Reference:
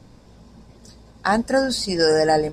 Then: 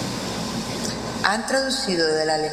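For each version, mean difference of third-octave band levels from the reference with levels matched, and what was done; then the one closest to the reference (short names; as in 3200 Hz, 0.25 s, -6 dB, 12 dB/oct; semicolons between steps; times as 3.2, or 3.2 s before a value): 14.5 dB: tilt shelf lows -4 dB; plate-style reverb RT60 2.1 s, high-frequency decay 0.9×, DRR 7.5 dB; three-band squash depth 100%; gain -2.5 dB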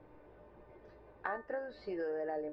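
8.5 dB: LPF 2300 Hz 24 dB/oct; resonant low shelf 300 Hz -7 dB, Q 3; compressor 4:1, threshold -31 dBFS, peak gain reduction 16 dB; resonator 300 Hz, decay 0.29 s, harmonics all, mix 80%; gain +4.5 dB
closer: second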